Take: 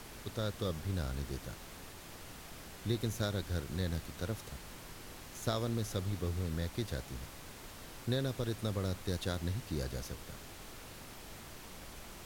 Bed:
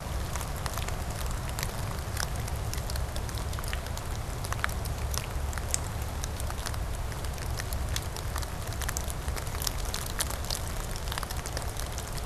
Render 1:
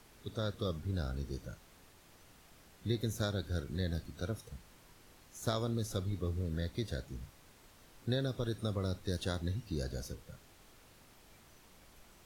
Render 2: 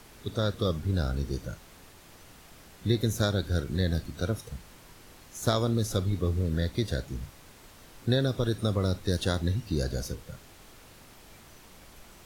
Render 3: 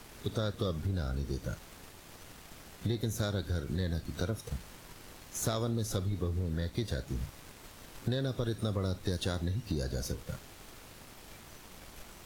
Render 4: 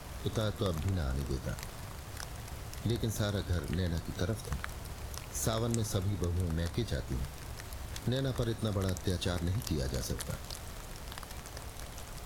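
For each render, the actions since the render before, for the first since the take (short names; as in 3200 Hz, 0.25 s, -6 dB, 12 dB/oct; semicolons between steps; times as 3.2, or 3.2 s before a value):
noise print and reduce 11 dB
gain +8.5 dB
sample leveller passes 1; compressor 4:1, threshold -31 dBFS, peak gain reduction 11 dB
add bed -11 dB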